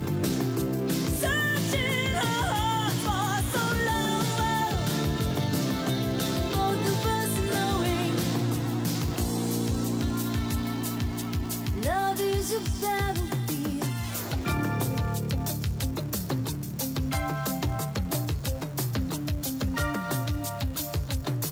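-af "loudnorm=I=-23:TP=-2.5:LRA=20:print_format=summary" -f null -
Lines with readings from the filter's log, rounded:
Input Integrated:    -28.3 LUFS
Input True Peak:     -14.1 dBTP
Input LRA:             3.6 LU
Input Threshold:     -38.3 LUFS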